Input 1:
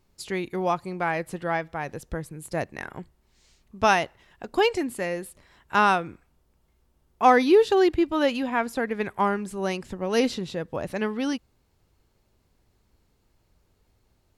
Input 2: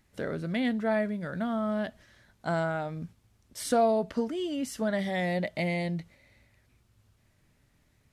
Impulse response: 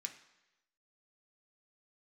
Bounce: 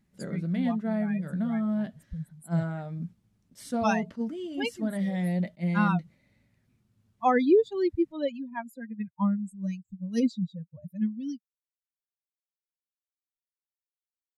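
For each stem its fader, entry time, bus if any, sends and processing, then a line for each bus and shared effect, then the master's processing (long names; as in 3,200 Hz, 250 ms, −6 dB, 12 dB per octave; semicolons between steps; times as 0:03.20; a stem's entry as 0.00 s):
−4.5 dB, 0.00 s, no send, spectral dynamics exaggerated over time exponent 3
−5.0 dB, 0.00 s, no send, flanger 0.35 Hz, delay 4.9 ms, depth 4.3 ms, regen −61%; level that may rise only so fast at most 410 dB per second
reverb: not used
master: parametric band 190 Hz +14 dB 1.2 octaves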